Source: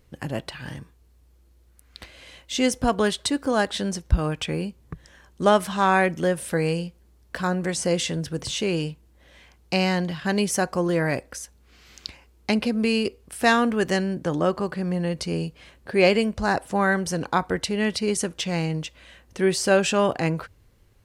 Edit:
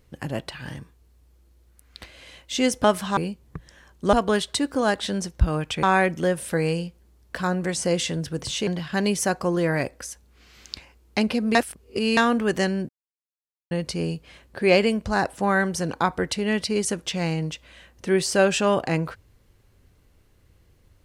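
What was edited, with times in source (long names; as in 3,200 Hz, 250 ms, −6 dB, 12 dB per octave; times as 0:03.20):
0:02.84–0:04.54: swap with 0:05.50–0:05.83
0:08.67–0:09.99: remove
0:12.87–0:13.49: reverse
0:14.21–0:15.03: silence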